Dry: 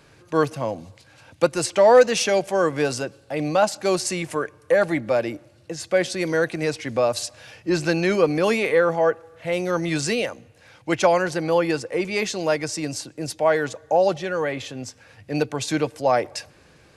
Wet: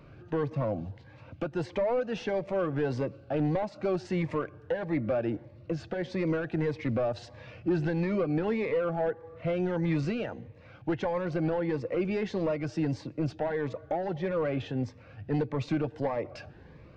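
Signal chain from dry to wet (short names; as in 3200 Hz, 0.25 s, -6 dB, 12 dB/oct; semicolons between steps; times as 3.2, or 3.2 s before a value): bell 370 Hz -3 dB 2.1 oct; compressor 6:1, threshold -26 dBFS, peak gain reduction 14 dB; hard clip -26.5 dBFS, distortion -12 dB; tape spacing loss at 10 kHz 45 dB; cascading phaser rising 1.6 Hz; gain +6.5 dB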